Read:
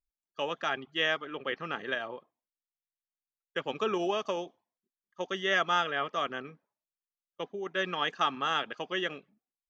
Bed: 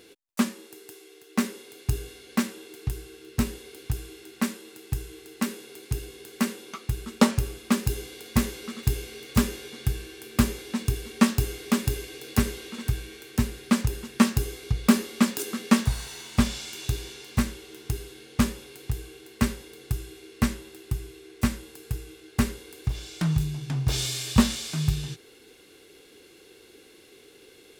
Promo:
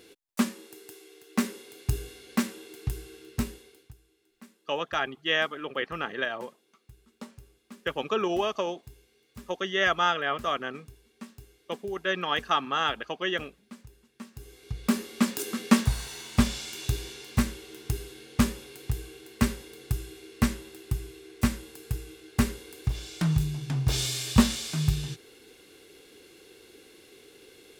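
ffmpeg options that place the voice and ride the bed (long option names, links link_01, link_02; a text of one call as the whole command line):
ffmpeg -i stem1.wav -i stem2.wav -filter_complex "[0:a]adelay=4300,volume=3dB[link_01];[1:a]volume=22.5dB,afade=type=out:start_time=3.17:duration=0.77:silence=0.0707946,afade=type=in:start_time=14.32:duration=1.24:silence=0.0630957[link_02];[link_01][link_02]amix=inputs=2:normalize=0" out.wav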